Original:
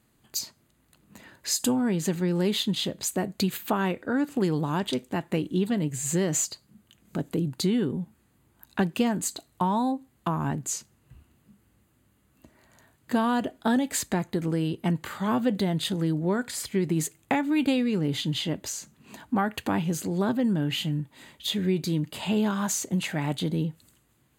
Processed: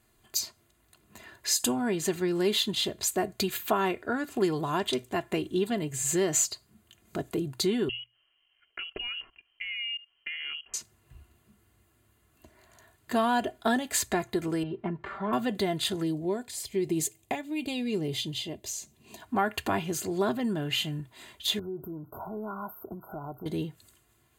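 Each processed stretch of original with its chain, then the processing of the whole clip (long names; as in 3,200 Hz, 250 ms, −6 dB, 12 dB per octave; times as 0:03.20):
0:07.89–0:10.74: output level in coarse steps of 18 dB + voice inversion scrambler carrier 3,100 Hz
0:14.63–0:15.33: low-pass filter 1,600 Hz + downward compressor 1.5 to 1, threshold −32 dBFS + comb filter 5.1 ms, depth 59%
0:16.03–0:19.22: parametric band 1,400 Hz −13.5 dB 0.85 octaves + amplitude tremolo 1 Hz, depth 43%
0:21.59–0:23.46: parametric band 850 Hz +4.5 dB 0.32 octaves + downward compressor, threshold −31 dBFS + linear-phase brick-wall band-stop 1,500–12,000 Hz
whole clip: parametric band 280 Hz −13 dB 0.29 octaves; mains-hum notches 60/120 Hz; comb filter 2.9 ms, depth 63%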